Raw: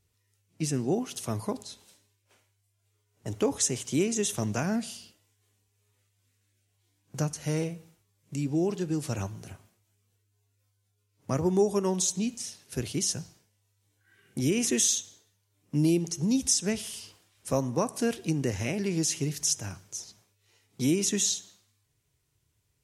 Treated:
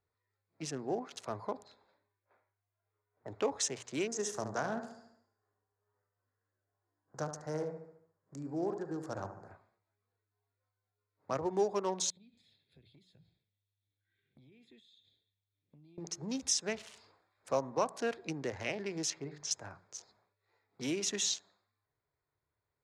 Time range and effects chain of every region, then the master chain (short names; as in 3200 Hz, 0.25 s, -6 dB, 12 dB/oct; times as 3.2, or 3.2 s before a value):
1.63–3.4 low-pass opened by the level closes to 2800 Hz, open at -37.5 dBFS + high shelf 4300 Hz -3 dB
4.07–9.51 band shelf 3000 Hz -14 dB 1.2 oct + feedback echo 72 ms, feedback 51%, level -8.5 dB
12.1–15.98 EQ curve 140 Hz 0 dB, 350 Hz -11 dB, 1200 Hz -27 dB, 3400 Hz +9 dB, 5800 Hz -18 dB, 13000 Hz +4 dB + compressor 10:1, threshold -44 dBFS
19.1–19.51 air absorption 99 m + notches 50/100/150/200/250/300/350/400/450/500 Hz
whole clip: Wiener smoothing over 15 samples; three-band isolator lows -15 dB, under 470 Hz, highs -19 dB, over 5900 Hz; notches 60/120/180 Hz